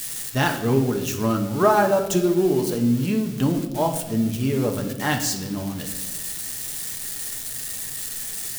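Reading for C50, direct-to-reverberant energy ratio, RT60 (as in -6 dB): 9.0 dB, 3.0 dB, 1.0 s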